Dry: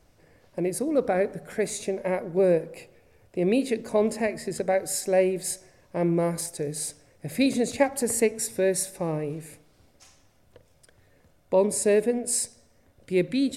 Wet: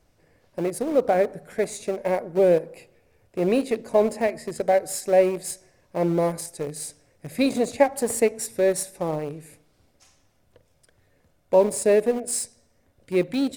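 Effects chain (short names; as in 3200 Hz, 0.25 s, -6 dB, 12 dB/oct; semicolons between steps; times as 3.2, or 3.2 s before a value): in parallel at -9 dB: sample gate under -24.5 dBFS; on the sum: dynamic EQ 700 Hz, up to +6 dB, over -34 dBFS, Q 1.1; gain -3 dB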